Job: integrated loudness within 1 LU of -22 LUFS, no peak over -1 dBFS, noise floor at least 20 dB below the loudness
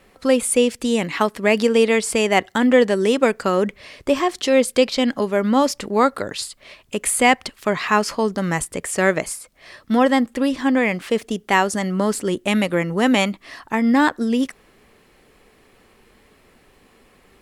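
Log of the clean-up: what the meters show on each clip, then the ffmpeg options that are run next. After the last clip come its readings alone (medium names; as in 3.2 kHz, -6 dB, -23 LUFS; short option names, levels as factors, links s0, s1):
loudness -19.5 LUFS; peak level -2.0 dBFS; loudness target -22.0 LUFS
-> -af "volume=0.75"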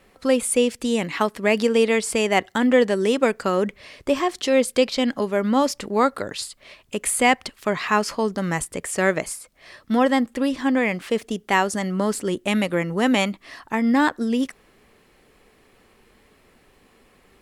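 loudness -22.0 LUFS; peak level -4.5 dBFS; noise floor -58 dBFS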